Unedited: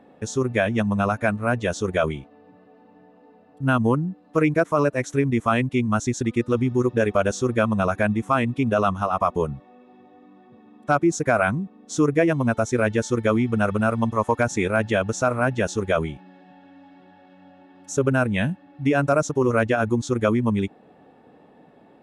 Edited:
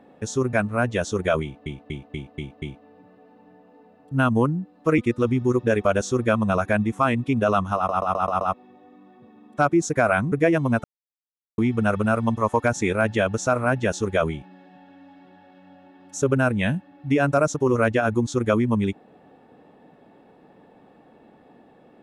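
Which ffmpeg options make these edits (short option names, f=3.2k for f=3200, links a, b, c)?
-filter_complex "[0:a]asplit=17[a][b][c][d][e][f][g][h][i][j][k][l][m][n][o][p][q];[a]atrim=end=0.532[r];[b]atrim=start=1.218:end=2.352[s];[c]atrim=start=2.108:end=2.352[t];[d]atrim=start=2.108:end=2.352[u];[e]atrim=start=2.108:end=2.352[v];[f]atrim=start=2.108:end=2.352[w];[g]atrim=start=2.108:end=4.472[x];[h]atrim=start=6.278:end=9.192[y];[i]atrim=start=9.058:end=9.192[z];[j]atrim=start=9.058:end=9.192[aa];[k]atrim=start=9.058:end=9.192[ab];[l]atrim=start=9.058:end=9.192[ac];[m]atrim=start=9.058:end=9.192[ad];[n]atrim=start=9.838:end=11.622[ae];[o]atrim=start=12.068:end=12.59,asetpts=PTS-STARTPTS,afade=t=out:st=0.518:d=0.004:c=hsin[af];[p]atrim=start=12.59:end=13.33,asetpts=PTS-STARTPTS,volume=0[ag];[q]atrim=start=13.33,asetpts=PTS-STARTPTS,afade=t=in:d=0.004:c=hsin[ah];[r][s]acrossfade=d=0.004:c1=hsin:c2=hsin[ai];[ai][t]acrossfade=d=0.004:c1=hsin:c2=hsin[aj];[aj][u]acrossfade=d=0.004:c1=hsin:c2=hsin[ak];[ak][v]acrossfade=d=0.004:c1=hsin:c2=hsin[al];[al][w]acrossfade=d=0.004:c1=hsin:c2=hsin[am];[am][x]acrossfade=d=0.004:c1=hsin:c2=hsin[an];[an][y]acrossfade=d=0.004:c1=hsin:c2=hsin[ao];[ao][z]acrossfade=d=0.004:c1=hsin:c2=hsin[ap];[ap][aa]acrossfade=d=0.004:c1=hsin:c2=hsin[aq];[aq][ab]acrossfade=d=0.004:c1=hsin:c2=hsin[ar];[ar][ac]acrossfade=d=0.004:c1=hsin:c2=hsin[as];[as][ad]acrossfade=d=0.004:c1=hsin:c2=hsin[at];[at][ae]acrossfade=d=0.004:c1=hsin:c2=hsin[au];[af][ag][ah]concat=n=3:v=0:a=1[av];[au][av]acrossfade=d=0.004:c1=hsin:c2=hsin"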